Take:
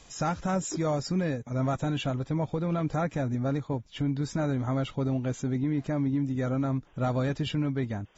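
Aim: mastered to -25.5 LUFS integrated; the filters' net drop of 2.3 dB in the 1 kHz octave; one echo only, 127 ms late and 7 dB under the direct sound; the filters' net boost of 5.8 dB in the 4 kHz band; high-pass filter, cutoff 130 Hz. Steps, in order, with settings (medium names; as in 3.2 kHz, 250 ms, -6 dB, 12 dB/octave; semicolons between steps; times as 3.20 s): high-pass 130 Hz; peaking EQ 1 kHz -4 dB; peaking EQ 4 kHz +8.5 dB; delay 127 ms -7 dB; trim +4.5 dB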